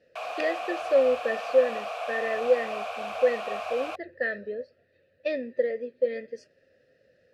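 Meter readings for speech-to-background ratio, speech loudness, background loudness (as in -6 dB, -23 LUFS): 6.5 dB, -28.0 LUFS, -34.5 LUFS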